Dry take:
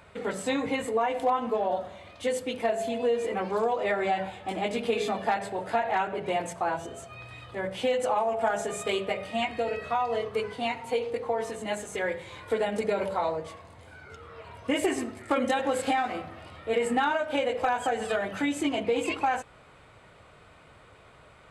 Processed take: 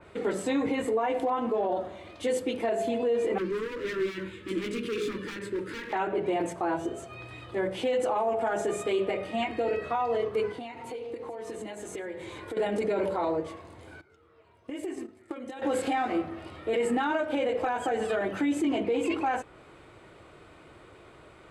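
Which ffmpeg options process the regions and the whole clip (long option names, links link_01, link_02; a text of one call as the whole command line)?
ffmpeg -i in.wav -filter_complex "[0:a]asettb=1/sr,asplit=3[link_01][link_02][link_03];[link_01]atrim=end=3.384[link_04];[link_02]atrim=start=3.38:end=5.93,asetpts=PTS-STARTPTS,afade=type=in:duration=0.004:curve=qsin,afade=type=out:start_time=2.546:duration=0.004:curve=qsin,asoftclip=type=hard:threshold=-29.5dB,asuperstop=centerf=720:order=4:qfactor=0.94[link_05];[link_03]atrim=start=5.926[link_06];[link_04][link_05]acrossfade=duration=0.004:curve1=hsin:curve2=qsin[link_07];[link_07][link_06]acrossfade=duration=0.004:curve1=qsin:curve2=hsin,asettb=1/sr,asplit=3[link_08][link_09][link_10];[link_08]atrim=end=10.514[link_11];[link_09]atrim=start=10.51:end=12.57,asetpts=PTS-STARTPTS,afade=type=in:duration=0.004:curve=qsin,afade=type=out:start_time=2.056:duration=0.004:curve=qsin,acompressor=threshold=-38dB:ratio=6:attack=3.2:release=140:knee=1:detection=peak,aecho=1:1:433:0.15,atrim=end_sample=90846[link_12];[link_10]atrim=start=12.566[link_13];[link_11][link_12]acrossfade=duration=0.004:curve1=hsin:curve2=qsin[link_14];[link_14][link_13]acrossfade=duration=0.004:curve1=qsin:curve2=hsin,asettb=1/sr,asplit=3[link_15][link_16][link_17];[link_15]atrim=end=14.014[link_18];[link_16]atrim=start=14.01:end=15.62,asetpts=PTS-STARTPTS,afade=type=in:duration=0.004:curve=qsin,afade=type=out:start_time=1.606:duration=0.004:curve=qsin,agate=range=-17dB:threshold=-33dB:ratio=16:release=100:detection=peak,acompressor=threshold=-39dB:ratio=10:attack=3.2:release=140:knee=1:detection=peak[link_19];[link_17]atrim=start=15.616[link_20];[link_18][link_19]acrossfade=duration=0.004:curve1=hsin:curve2=qsin[link_21];[link_21][link_20]acrossfade=duration=0.004:curve1=qsin:curve2=hsin,equalizer=frequency=340:width_type=o:width=0.51:gain=12.5,alimiter=limit=-20dB:level=0:latency=1:release=20,adynamicequalizer=threshold=0.00447:dfrequency=2900:dqfactor=0.7:tfrequency=2900:tqfactor=0.7:attack=5:release=100:ratio=0.375:range=2:mode=cutabove:tftype=highshelf" out.wav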